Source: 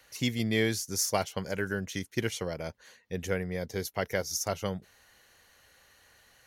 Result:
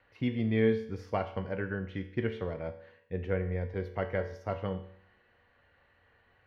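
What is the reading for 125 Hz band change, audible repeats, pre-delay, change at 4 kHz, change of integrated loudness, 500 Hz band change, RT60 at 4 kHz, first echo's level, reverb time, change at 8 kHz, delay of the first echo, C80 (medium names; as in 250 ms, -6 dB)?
+1.0 dB, no echo, 4 ms, -14.5 dB, -1.5 dB, +0.5 dB, 0.65 s, no echo, 0.65 s, under -35 dB, no echo, 14.0 dB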